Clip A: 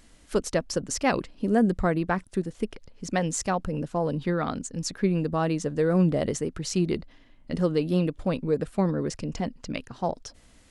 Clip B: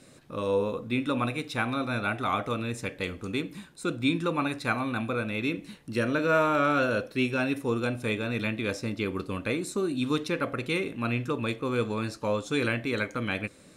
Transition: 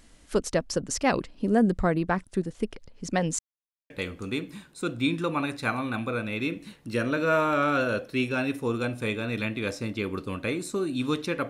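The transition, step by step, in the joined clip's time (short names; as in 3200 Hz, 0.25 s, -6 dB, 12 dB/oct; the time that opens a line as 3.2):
clip A
3.39–3.9 mute
3.9 switch to clip B from 2.92 s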